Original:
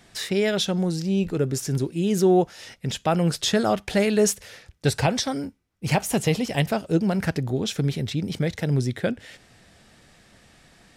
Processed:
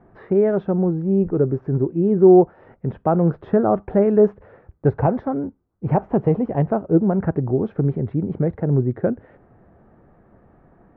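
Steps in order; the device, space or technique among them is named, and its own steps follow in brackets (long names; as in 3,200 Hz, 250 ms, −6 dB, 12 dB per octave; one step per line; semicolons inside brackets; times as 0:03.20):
under water (low-pass filter 1,200 Hz 24 dB per octave; parametric band 370 Hz +4.5 dB 0.49 octaves)
level +3.5 dB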